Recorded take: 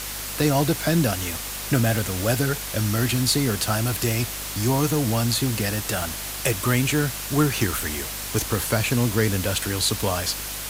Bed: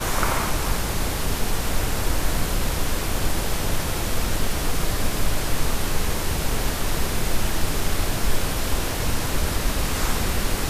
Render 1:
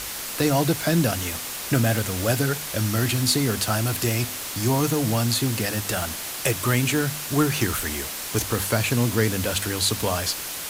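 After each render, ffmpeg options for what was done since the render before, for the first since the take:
-af "bandreject=f=50:t=h:w=4,bandreject=f=100:t=h:w=4,bandreject=f=150:t=h:w=4,bandreject=f=200:t=h:w=4,bandreject=f=250:t=h:w=4"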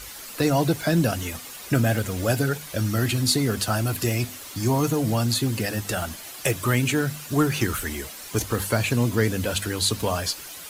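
-af "afftdn=nr=10:nf=-33"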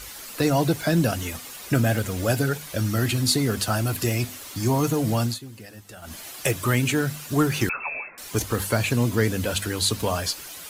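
-filter_complex "[0:a]asettb=1/sr,asplit=3[a][b][c];[a]atrim=end=7.694[d];[b]atrim=start=7.69:end=8.18,asetpts=PTS-STARTPTS,afade=t=in:d=0.004:c=qsin,afade=t=out:st=0.486:d=0.004:c=qsin,lowpass=f=2.3k:t=q:w=0.5098,lowpass=f=2.3k:t=q:w=0.6013,lowpass=f=2.3k:t=q:w=0.9,lowpass=f=2.3k:t=q:w=2.563,afreqshift=-2700[e];[c]atrim=start=8.176[f];[d][e]acrossfade=d=0.004:c1=hsin:c2=qsin[g];[g][f]acrossfade=d=0.004:c1=qsin:c2=hsin,asplit=3[h][i][j];[h]atrim=end=5.39,asetpts=PTS-STARTPTS,afade=t=out:st=5.24:d=0.15:silence=0.158489[k];[i]atrim=start=5.39:end=6.02,asetpts=PTS-STARTPTS,volume=-16dB[l];[j]atrim=start=6.02,asetpts=PTS-STARTPTS,afade=t=in:d=0.15:silence=0.158489[m];[k][l][m]concat=n=3:v=0:a=1"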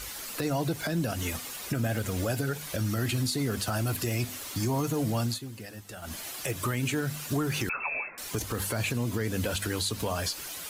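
-af "acompressor=threshold=-26dB:ratio=2.5,alimiter=limit=-20dB:level=0:latency=1:release=65"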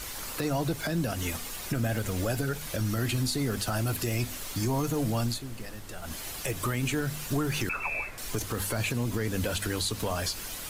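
-filter_complex "[1:a]volume=-22.5dB[a];[0:a][a]amix=inputs=2:normalize=0"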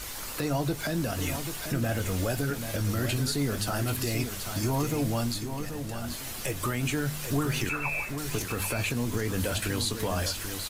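-filter_complex "[0:a]asplit=2[a][b];[b]adelay=21,volume=-12dB[c];[a][c]amix=inputs=2:normalize=0,aecho=1:1:786:0.398"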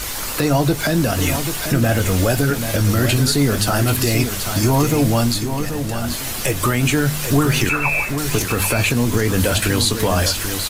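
-af "volume=12dB"

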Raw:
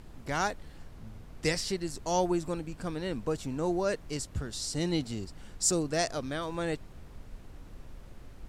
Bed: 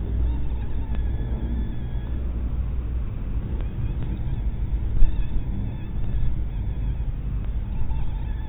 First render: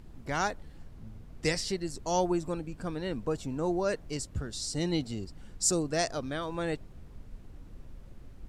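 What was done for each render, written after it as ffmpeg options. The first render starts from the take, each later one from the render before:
-af "afftdn=nr=6:nf=-50"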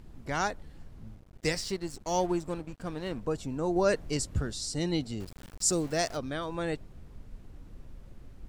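-filter_complex "[0:a]asettb=1/sr,asplit=3[a][b][c];[a]atrim=end=1.154[d];[b]atrim=start=1.15:end=3.21,asetpts=PTS-STARTPTS,afade=t=in:d=0.004:c=qsin,afade=t=out:st=2.056:d=0.004:c=qsin,aeval=exprs='sgn(val(0))*max(abs(val(0))-0.00422,0)':c=same[e];[c]atrim=start=3.206[f];[d][e]acrossfade=d=0.004:c1=hsin:c2=qsin[g];[g][f]acrossfade=d=0.004:c1=qsin:c2=hsin,asettb=1/sr,asplit=3[h][i][j];[h]atrim=end=5.204[k];[i]atrim=start=5.2:end=6.17,asetpts=PTS-STARTPTS,afade=t=in:d=0.004:c=qsin,afade=t=out:st=0.966:d=0.004:c=qsin,aeval=exprs='val(0)*gte(abs(val(0)),0.00708)':c=same[l];[j]atrim=start=6.166[m];[k][l]acrossfade=d=0.004:c1=hsin:c2=qsin[n];[n][m]acrossfade=d=0.004:c1=qsin:c2=hsin,asplit=3[o][p][q];[o]atrim=end=3.762[r];[p]atrim=start=3.758:end=4.532,asetpts=PTS-STARTPTS,volume=4.5dB[s];[q]atrim=start=4.528[t];[r][s]acrossfade=d=0.004:c1=hsin:c2=hsin[u];[u][t]acrossfade=d=0.004:c1=hsin:c2=hsin"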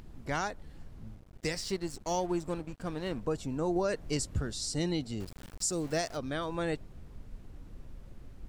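-af "alimiter=limit=-21.5dB:level=0:latency=1:release=263,acompressor=mode=upward:threshold=-51dB:ratio=2.5"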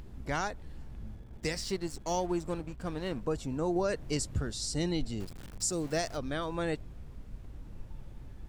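-filter_complex "[1:a]volume=-22.5dB[a];[0:a][a]amix=inputs=2:normalize=0"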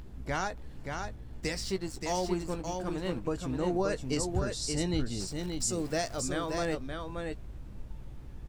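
-filter_complex "[0:a]asplit=2[a][b];[b]adelay=16,volume=-11.5dB[c];[a][c]amix=inputs=2:normalize=0,asplit=2[d][e];[e]aecho=0:1:577:0.562[f];[d][f]amix=inputs=2:normalize=0"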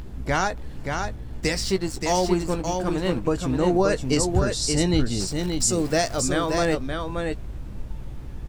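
-af "volume=9.5dB"

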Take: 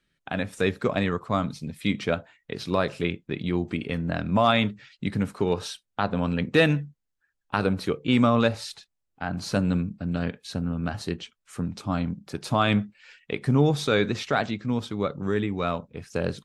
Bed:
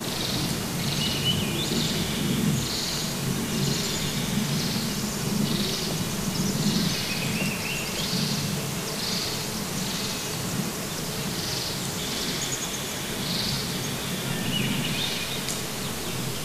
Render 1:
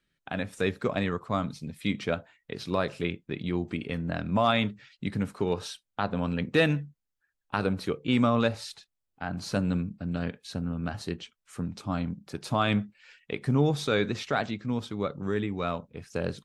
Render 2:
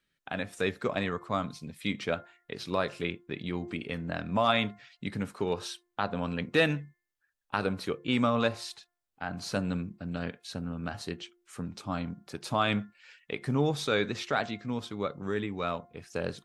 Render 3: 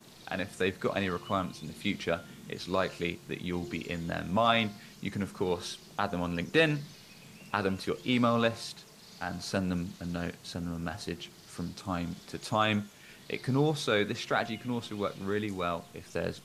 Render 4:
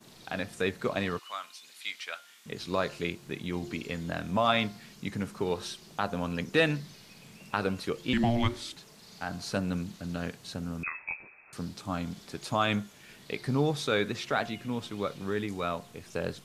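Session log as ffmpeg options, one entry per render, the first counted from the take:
-af "volume=-3.5dB"
-af "lowshelf=f=310:g=-6,bandreject=f=351:t=h:w=4,bandreject=f=702:t=h:w=4,bandreject=f=1.053k:t=h:w=4,bandreject=f=1.404k:t=h:w=4,bandreject=f=1.755k:t=h:w=4,bandreject=f=2.106k:t=h:w=4"
-filter_complex "[1:a]volume=-24.5dB[a];[0:a][a]amix=inputs=2:normalize=0"
-filter_complex "[0:a]asettb=1/sr,asplit=3[a][b][c];[a]atrim=end=1.194[d];[b]atrim=start=1.19:end=2.46,asetpts=PTS-STARTPTS,afade=t=in:d=0.004:c=qsin,afade=t=out:st=1.266:d=0.004:c=qsin,highpass=1.4k[e];[c]atrim=start=2.456[f];[d][e]acrossfade=d=0.004:c1=hsin:c2=qsin[g];[g][f]acrossfade=d=0.004:c1=qsin:c2=hsin,asettb=1/sr,asplit=3[h][i][j];[h]atrim=end=8.134[k];[i]atrim=start=8.13:end=8.76,asetpts=PTS-STARTPTS,afade=t=in:d=0.004:c=qsin,afade=t=out:st=0.626:d=0.004:c=qsin,afreqshift=-470[l];[j]atrim=start=8.756[m];[k][l]acrossfade=d=0.004:c1=hsin:c2=qsin[n];[n][m]acrossfade=d=0.004:c1=qsin:c2=hsin,asettb=1/sr,asplit=3[o][p][q];[o]atrim=end=10.834[r];[p]atrim=start=10.83:end=11.53,asetpts=PTS-STARTPTS,afade=t=in:d=0.004:c=qsin,afade=t=out:st=0.696:d=0.004:c=qsin,lowpass=f=2.3k:t=q:w=0.5098,lowpass=f=2.3k:t=q:w=0.6013,lowpass=f=2.3k:t=q:w=0.9,lowpass=f=2.3k:t=q:w=2.563,afreqshift=-2700[s];[q]atrim=start=11.526[t];[r][s]acrossfade=d=0.004:c1=hsin:c2=qsin[u];[u][t]acrossfade=d=0.004:c1=qsin:c2=hsin"

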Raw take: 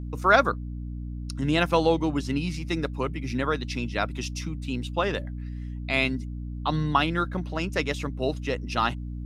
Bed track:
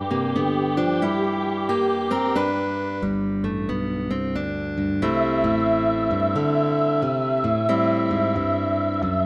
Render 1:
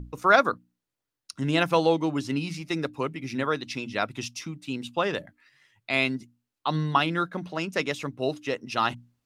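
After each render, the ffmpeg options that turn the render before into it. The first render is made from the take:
-af "bandreject=f=60:t=h:w=6,bandreject=f=120:t=h:w=6,bandreject=f=180:t=h:w=6,bandreject=f=240:t=h:w=6,bandreject=f=300:t=h:w=6"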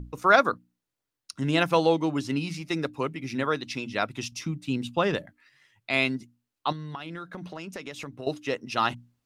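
-filter_complex "[0:a]asettb=1/sr,asplit=3[a][b][c];[a]atrim=end=4.324[d];[b]atrim=start=4.32:end=5.17,asetpts=PTS-STARTPTS,afade=t=in:d=0.004:c=qsin,afade=t=out:st=0.846:d=0.004:c=qsin,lowshelf=f=210:g=10[e];[c]atrim=start=5.166[f];[d][e]acrossfade=d=0.004:c1=hsin:c2=qsin[g];[g][f]acrossfade=d=0.004:c1=qsin:c2=hsin,asettb=1/sr,asplit=3[h][i][j];[h]atrim=end=6.724[k];[i]atrim=start=6.72:end=8.27,asetpts=PTS-STARTPTS,afade=t=in:d=0.004:c=qsin,afade=t=out:st=1.546:d=0.004:c=qsin,acompressor=threshold=-33dB:ratio=12:attack=3.2:release=140:knee=1:detection=peak[l];[j]atrim=start=8.266[m];[k][l]acrossfade=d=0.004:c1=hsin:c2=qsin[n];[n][m]acrossfade=d=0.004:c1=qsin:c2=hsin"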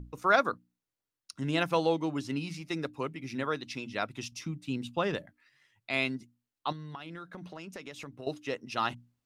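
-af "volume=-5.5dB"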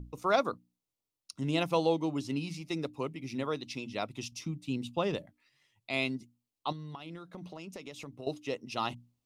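-af "equalizer=f=1.6k:w=2.5:g=-12"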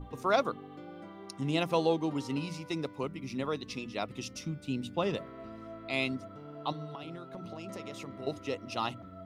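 -filter_complex "[1:a]volume=-25.5dB[a];[0:a][a]amix=inputs=2:normalize=0"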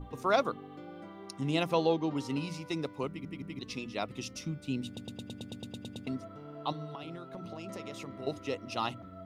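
-filter_complex "[0:a]asettb=1/sr,asplit=3[a][b][c];[a]atrim=end=1.734[d];[b]atrim=start=1.73:end=2.17,asetpts=PTS-STARTPTS,afade=t=in:d=0.004:c=qsin,afade=t=out:st=0.436:d=0.004:c=qsin,lowpass=f=6k:w=0.5412,lowpass=f=6k:w=1.3066[e];[c]atrim=start=2.166[f];[d][e]acrossfade=d=0.004:c1=hsin:c2=qsin[g];[g][f]acrossfade=d=0.004:c1=qsin:c2=hsin,asplit=15[h][i][j][k][l][m][n][o][p][q][r][s][t][u][v];[h]atrim=end=3.252[w];[i]atrim=start=3.078:end=3.252[x];[j]atrim=start=3.078:end=3.252[y];[k]atrim=start=3.588:end=4.972[z];[l]atrim=start=4.858:end=4.972[aa];[m]atrim=start=4.858:end=4.972[ab];[n]atrim=start=4.858:end=4.972[ac];[o]atrim=start=4.858:end=4.972[ad];[p]atrim=start=4.858:end=4.972[ae];[q]atrim=start=4.858:end=4.972[af];[r]atrim=start=4.858:end=4.972[ag];[s]atrim=start=4.858:end=4.972[ah];[t]atrim=start=4.858:end=4.972[ai];[u]atrim=start=4.858:end=4.972[aj];[v]atrim=start=6.068[ak];[w][x]acrossfade=d=0.004:c1=hsin:c2=hsin[al];[al][y]acrossfade=d=0.004:c1=hsin:c2=hsin[am];[am][z]acrossfade=d=0.004:c1=hsin:c2=hsin[an];[an][aa]acrossfade=d=0.004:c1=hsin:c2=hsin[ao];[ao][ab]acrossfade=d=0.004:c1=hsin:c2=hsin[ap];[ap][ac]acrossfade=d=0.004:c1=hsin:c2=hsin[aq];[aq][ad]acrossfade=d=0.004:c1=hsin:c2=hsin[ar];[ar][ae]acrossfade=d=0.004:c1=hsin:c2=hsin[as];[as][af]acrossfade=d=0.004:c1=hsin:c2=hsin[at];[at][ag]acrossfade=d=0.004:c1=hsin:c2=hsin[au];[au][ah]acrossfade=d=0.004:c1=hsin:c2=hsin[av];[av][ai]acrossfade=d=0.004:c1=hsin:c2=hsin[aw];[aw][aj]acrossfade=d=0.004:c1=hsin:c2=hsin[ax];[ax][ak]acrossfade=d=0.004:c1=hsin:c2=hsin"

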